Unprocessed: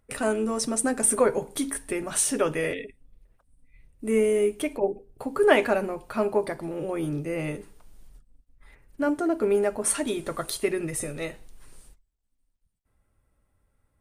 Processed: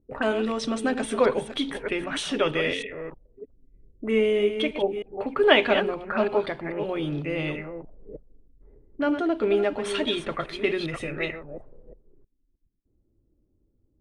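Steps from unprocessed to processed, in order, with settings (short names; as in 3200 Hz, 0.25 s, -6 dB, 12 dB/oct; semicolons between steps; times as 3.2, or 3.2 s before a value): reverse delay 0.314 s, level -9 dB; envelope low-pass 330–3400 Hz up, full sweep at -26 dBFS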